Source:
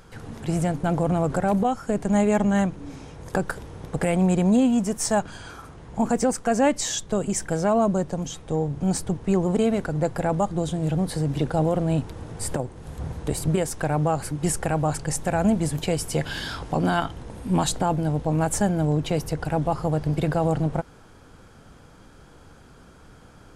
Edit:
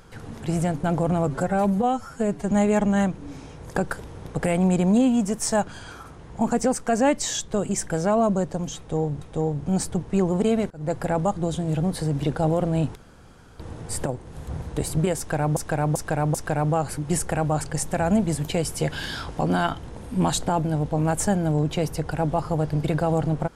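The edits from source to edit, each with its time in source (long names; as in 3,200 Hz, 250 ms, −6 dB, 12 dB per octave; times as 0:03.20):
0:01.27–0:02.10: time-stretch 1.5×
0:08.36–0:08.80: repeat, 2 plays
0:09.85–0:10.10: fade in
0:12.10: splice in room tone 0.64 s
0:13.68–0:14.07: repeat, 4 plays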